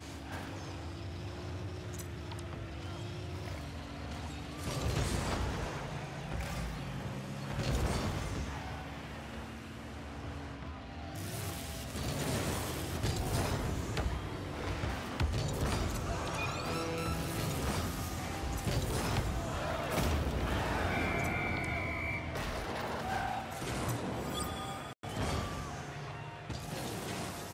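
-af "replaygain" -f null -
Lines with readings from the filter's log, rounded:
track_gain = +19.3 dB
track_peak = 0.075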